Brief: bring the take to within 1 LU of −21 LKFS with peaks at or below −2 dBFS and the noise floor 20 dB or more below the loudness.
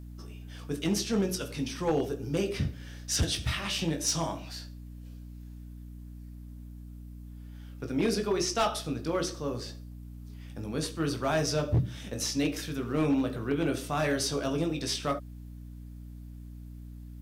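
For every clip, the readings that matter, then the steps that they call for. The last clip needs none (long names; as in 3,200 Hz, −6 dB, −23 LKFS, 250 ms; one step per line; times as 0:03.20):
share of clipped samples 0.5%; peaks flattened at −20.5 dBFS; mains hum 60 Hz; hum harmonics up to 300 Hz; level of the hum −41 dBFS; integrated loudness −30.5 LKFS; sample peak −20.5 dBFS; target loudness −21.0 LKFS
→ clipped peaks rebuilt −20.5 dBFS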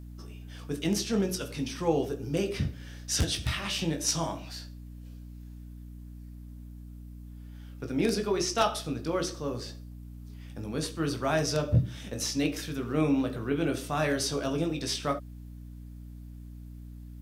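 share of clipped samples 0.0%; mains hum 60 Hz; hum harmonics up to 240 Hz; level of the hum −41 dBFS
→ hum removal 60 Hz, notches 4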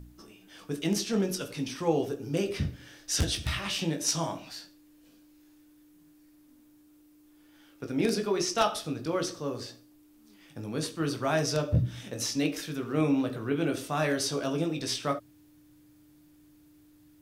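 mains hum none found; integrated loudness −30.0 LKFS; sample peak −11.5 dBFS; target loudness −21.0 LKFS
→ level +9 dB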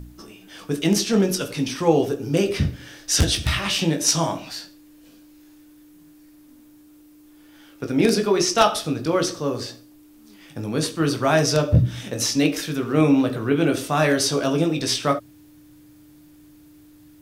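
integrated loudness −21.0 LKFS; sample peak −2.5 dBFS; background noise floor −50 dBFS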